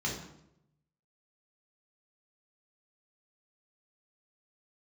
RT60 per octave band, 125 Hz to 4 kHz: 1.2, 0.95, 0.90, 0.75, 0.65, 0.60 seconds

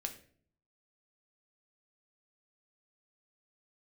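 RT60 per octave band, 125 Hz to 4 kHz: 0.85, 0.75, 0.60, 0.45, 0.45, 0.35 seconds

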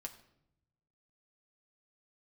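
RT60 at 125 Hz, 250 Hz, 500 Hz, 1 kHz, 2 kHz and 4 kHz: 1.5, 1.1, 0.85, 0.70, 0.60, 0.55 seconds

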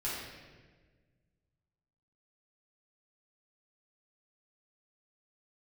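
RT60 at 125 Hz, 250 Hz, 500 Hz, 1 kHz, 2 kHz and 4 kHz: 2.5, 2.0, 1.7, 1.2, 1.3, 1.1 seconds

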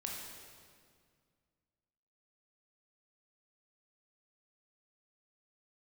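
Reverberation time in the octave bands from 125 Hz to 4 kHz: 2.6, 2.5, 2.1, 1.9, 1.8, 1.7 seconds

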